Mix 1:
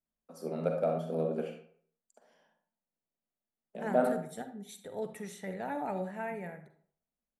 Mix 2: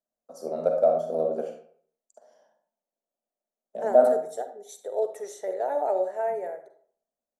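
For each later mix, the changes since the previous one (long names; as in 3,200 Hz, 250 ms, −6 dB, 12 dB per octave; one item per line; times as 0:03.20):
second voice: add low shelf with overshoot 290 Hz −11 dB, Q 3
master: add graphic EQ with 15 bands 160 Hz −8 dB, 630 Hz +12 dB, 2,500 Hz −10 dB, 6,300 Hz +9 dB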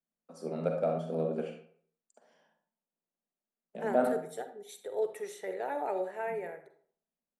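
first voice: add Butterworth low-pass 10,000 Hz
master: add graphic EQ with 15 bands 160 Hz +8 dB, 630 Hz −12 dB, 2,500 Hz +10 dB, 6,300 Hz −9 dB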